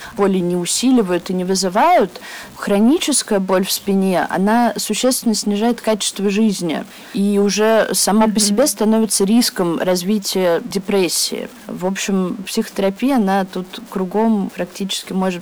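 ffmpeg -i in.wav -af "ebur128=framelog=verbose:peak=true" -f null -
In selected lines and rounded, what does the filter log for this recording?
Integrated loudness:
  I:         -16.6 LUFS
  Threshold: -26.8 LUFS
Loudness range:
  LRA:         4.2 LU
  Threshold: -36.6 LUFS
  LRA low:   -19.1 LUFS
  LRA high:  -14.9 LUFS
True peak:
  Peak:       -5.8 dBFS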